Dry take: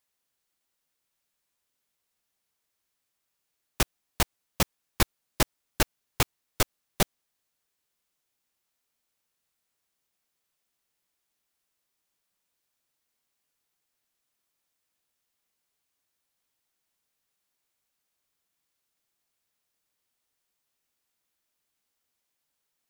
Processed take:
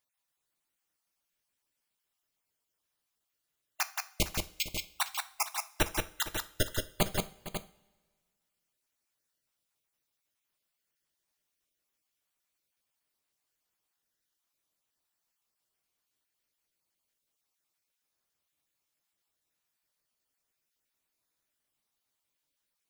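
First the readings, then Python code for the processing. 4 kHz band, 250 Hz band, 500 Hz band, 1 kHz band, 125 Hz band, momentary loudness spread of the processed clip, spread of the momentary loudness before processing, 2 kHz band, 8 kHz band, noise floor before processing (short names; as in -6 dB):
-3.0 dB, -5.0 dB, -3.5 dB, -3.5 dB, -5.5 dB, 5 LU, 1 LU, -3.0 dB, -3.5 dB, -81 dBFS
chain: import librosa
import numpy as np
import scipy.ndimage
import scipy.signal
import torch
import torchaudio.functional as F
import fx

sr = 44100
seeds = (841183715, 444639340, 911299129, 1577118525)

p1 = fx.spec_dropout(x, sr, seeds[0], share_pct=38)
p2 = p1 + fx.echo_multitap(p1, sr, ms=(175, 458, 545), db=(-4.0, -15.5, -9.5), dry=0)
p3 = fx.rev_double_slope(p2, sr, seeds[1], early_s=0.41, late_s=1.6, knee_db=-18, drr_db=11.0)
y = p3 * 10.0 ** (-3.0 / 20.0)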